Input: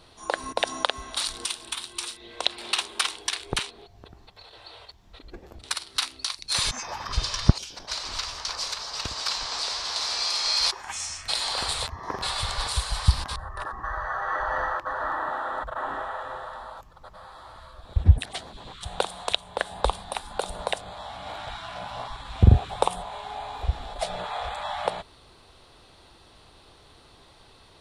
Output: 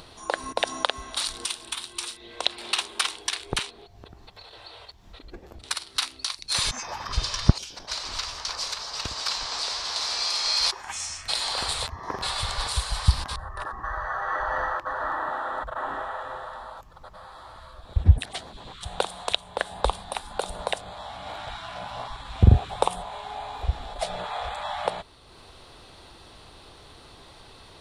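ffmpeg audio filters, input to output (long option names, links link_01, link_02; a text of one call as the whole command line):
ffmpeg -i in.wav -af "acompressor=mode=upward:threshold=-41dB:ratio=2.5" out.wav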